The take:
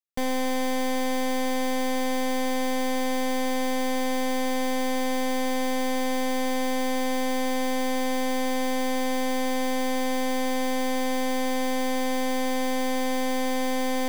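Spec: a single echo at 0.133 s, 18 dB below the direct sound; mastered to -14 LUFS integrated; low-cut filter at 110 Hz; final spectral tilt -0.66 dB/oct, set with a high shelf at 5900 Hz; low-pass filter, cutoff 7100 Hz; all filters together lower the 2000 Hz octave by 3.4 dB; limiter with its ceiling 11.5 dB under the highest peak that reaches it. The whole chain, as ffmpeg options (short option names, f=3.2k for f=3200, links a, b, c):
-af "highpass=110,lowpass=7.1k,equalizer=f=2k:t=o:g=-3,highshelf=f=5.9k:g=-7.5,alimiter=level_in=7dB:limit=-24dB:level=0:latency=1,volume=-7dB,aecho=1:1:133:0.126,volume=24.5dB"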